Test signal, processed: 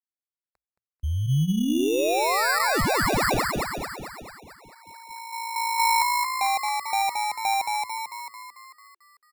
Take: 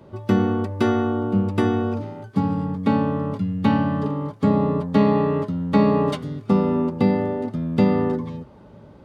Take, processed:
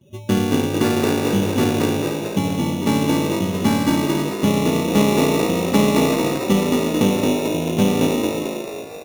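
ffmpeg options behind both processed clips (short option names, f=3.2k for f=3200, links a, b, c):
-filter_complex "[0:a]afftdn=nr=21:nf=-36,asplit=2[a][b];[b]asplit=8[c][d][e][f][g][h][i][j];[c]adelay=222,afreqshift=55,volume=-3dB[k];[d]adelay=444,afreqshift=110,volume=-7.9dB[l];[e]adelay=666,afreqshift=165,volume=-12.8dB[m];[f]adelay=888,afreqshift=220,volume=-17.6dB[n];[g]adelay=1110,afreqshift=275,volume=-22.5dB[o];[h]adelay=1332,afreqshift=330,volume=-27.4dB[p];[i]adelay=1554,afreqshift=385,volume=-32.3dB[q];[j]adelay=1776,afreqshift=440,volume=-37.2dB[r];[k][l][m][n][o][p][q][r]amix=inputs=8:normalize=0[s];[a][s]amix=inputs=2:normalize=0,acrusher=samples=14:mix=1:aa=0.000001,aeval=exprs='0.596*(cos(1*acos(clip(val(0)/0.596,-1,1)))-cos(1*PI/2))+0.00668*(cos(6*acos(clip(val(0)/0.596,-1,1)))-cos(6*PI/2))':c=same"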